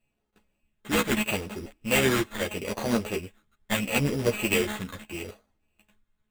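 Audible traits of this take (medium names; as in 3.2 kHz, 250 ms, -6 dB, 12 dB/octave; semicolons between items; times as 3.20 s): a buzz of ramps at a fixed pitch in blocks of 16 samples; phasing stages 6, 0.78 Hz, lowest notch 660–2400 Hz; aliases and images of a low sample rate 5.3 kHz, jitter 0%; a shimmering, thickened sound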